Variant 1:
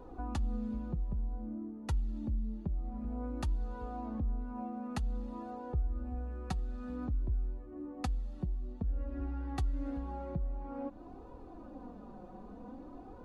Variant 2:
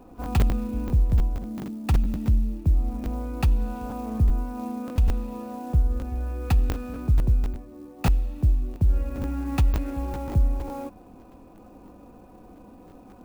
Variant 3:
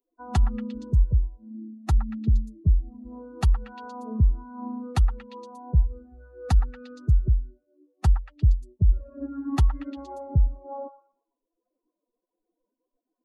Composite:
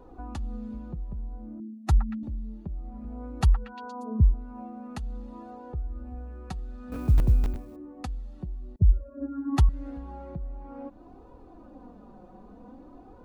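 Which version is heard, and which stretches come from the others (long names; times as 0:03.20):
1
0:01.60–0:02.23: punch in from 3
0:03.41–0:04.34: punch in from 3
0:06.92–0:07.76: punch in from 2
0:08.76–0:09.69: punch in from 3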